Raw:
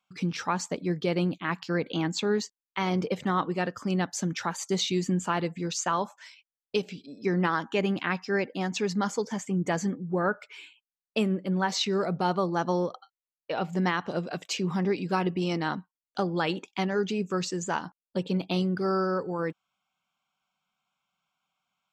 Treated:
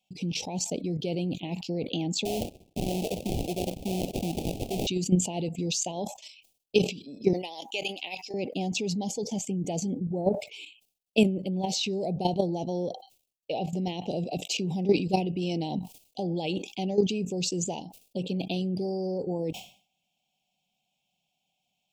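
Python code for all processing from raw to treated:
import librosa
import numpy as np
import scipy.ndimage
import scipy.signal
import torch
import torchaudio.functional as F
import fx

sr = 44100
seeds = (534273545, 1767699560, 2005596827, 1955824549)

y = fx.chain(x, sr, fx.highpass(hz=220.0, slope=12),
    fx.sample_hold(seeds[0], rate_hz=1100.0, jitter_pct=20), at=(2.25, 4.87))
y = fx.chain(y, sr, fx.highpass(hz=820.0, slope=12),
    fx.high_shelf(hz=4000.0, db=6.5), at=(7.33, 8.34))
y = fx.level_steps(y, sr, step_db=12)
y = scipy.signal.sosfilt(scipy.signal.ellip(3, 1.0, 60, [760.0, 2600.0], 'bandstop', fs=sr, output='sos'), y)
y = fx.sustainer(y, sr, db_per_s=130.0)
y = y * librosa.db_to_amplitude(7.5)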